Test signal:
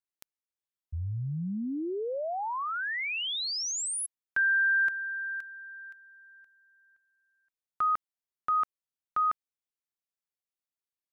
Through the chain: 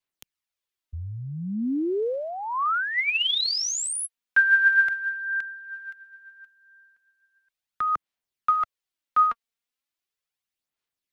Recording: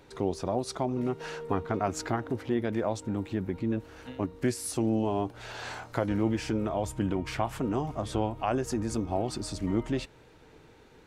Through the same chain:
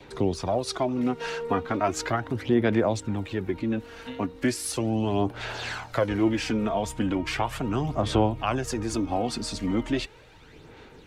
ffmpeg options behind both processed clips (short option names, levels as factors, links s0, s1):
-filter_complex "[0:a]adynamicequalizer=threshold=0.00794:dfrequency=1400:dqfactor=5:tfrequency=1400:tqfactor=5:attack=5:release=100:ratio=0.375:range=1.5:mode=cutabove:tftype=bell,aphaser=in_gain=1:out_gain=1:delay=4.4:decay=0.47:speed=0.37:type=sinusoidal,acrossover=split=140|440|3800[s0][s1][s2][s3];[s2]crystalizer=i=4.5:c=0[s4];[s0][s1][s4][s3]amix=inputs=4:normalize=0,volume=1.26"